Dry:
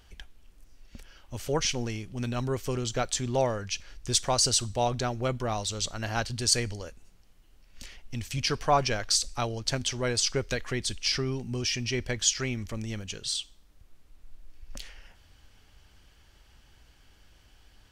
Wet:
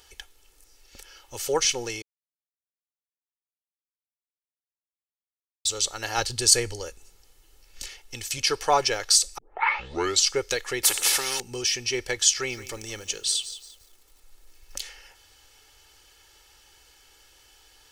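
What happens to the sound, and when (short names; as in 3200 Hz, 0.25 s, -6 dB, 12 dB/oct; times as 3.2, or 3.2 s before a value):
2.02–5.65 mute
6.18–7.88 low shelf 250 Hz +8 dB
9.38 tape start 0.90 s
10.83–11.4 spectral compressor 4:1
12.32–14.82 lo-fi delay 0.173 s, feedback 35%, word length 9-bit, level -15 dB
whole clip: tone controls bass -14 dB, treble +8 dB; comb 2.3 ms, depth 55%; dynamic EQ 5300 Hz, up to -5 dB, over -30 dBFS, Q 0.95; gain +3 dB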